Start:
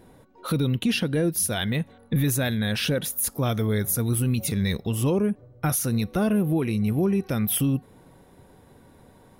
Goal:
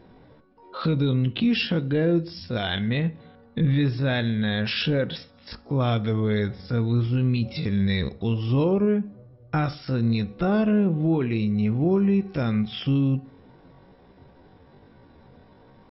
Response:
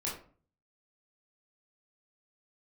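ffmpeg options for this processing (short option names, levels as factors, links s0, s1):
-filter_complex "[0:a]atempo=0.59,asplit=2[s0][s1];[1:a]atrim=start_sample=2205,lowpass=4100[s2];[s1][s2]afir=irnorm=-1:irlink=0,volume=0.158[s3];[s0][s3]amix=inputs=2:normalize=0" -ar 44100 -c:a mp2 -b:a 48k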